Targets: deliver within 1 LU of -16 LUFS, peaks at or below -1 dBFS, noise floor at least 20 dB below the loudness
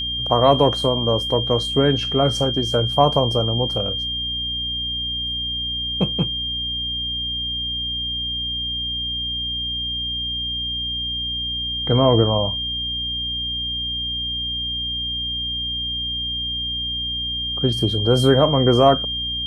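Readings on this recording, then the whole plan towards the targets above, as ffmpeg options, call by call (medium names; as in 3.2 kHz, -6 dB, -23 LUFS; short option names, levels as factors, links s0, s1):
hum 60 Hz; highest harmonic 300 Hz; hum level -32 dBFS; steady tone 3.2 kHz; tone level -23 dBFS; loudness -20.5 LUFS; peak level -2.5 dBFS; loudness target -16.0 LUFS
-> -af "bandreject=f=60:t=h:w=6,bandreject=f=120:t=h:w=6,bandreject=f=180:t=h:w=6,bandreject=f=240:t=h:w=6,bandreject=f=300:t=h:w=6"
-af "bandreject=f=3200:w=30"
-af "volume=1.68,alimiter=limit=0.891:level=0:latency=1"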